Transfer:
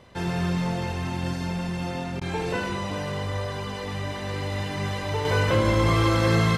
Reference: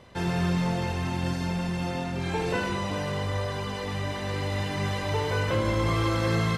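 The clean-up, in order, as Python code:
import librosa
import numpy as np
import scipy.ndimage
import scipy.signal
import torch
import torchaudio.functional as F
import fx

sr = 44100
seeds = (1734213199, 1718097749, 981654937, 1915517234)

y = fx.fix_interpolate(x, sr, at_s=(2.2,), length_ms=12.0)
y = fx.gain(y, sr, db=fx.steps((0.0, 0.0), (5.25, -4.5)))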